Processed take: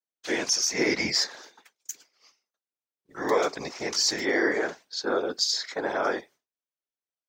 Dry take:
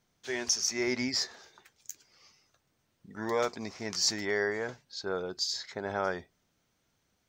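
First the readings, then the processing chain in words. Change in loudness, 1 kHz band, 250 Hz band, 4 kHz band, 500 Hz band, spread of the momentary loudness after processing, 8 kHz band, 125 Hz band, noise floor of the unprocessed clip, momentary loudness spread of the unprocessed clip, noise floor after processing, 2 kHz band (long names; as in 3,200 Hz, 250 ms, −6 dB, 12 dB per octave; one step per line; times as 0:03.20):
+5.5 dB, +6.0 dB, +5.5 dB, +5.5 dB, +5.5 dB, 16 LU, +4.0 dB, 0.0 dB, −76 dBFS, 18 LU, below −85 dBFS, +6.5 dB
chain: high-pass filter 300 Hz 24 dB per octave
downward expander −53 dBFS
brickwall limiter −21 dBFS, peak gain reduction 7.5 dB
random phases in short frames
level +7.5 dB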